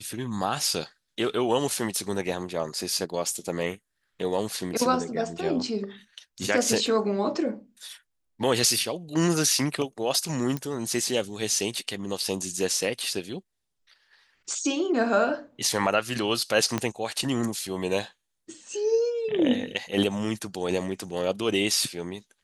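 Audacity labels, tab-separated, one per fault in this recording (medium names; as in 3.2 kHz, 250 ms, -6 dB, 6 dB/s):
10.570000	10.570000	pop -17 dBFS
16.780000	16.780000	pop -11 dBFS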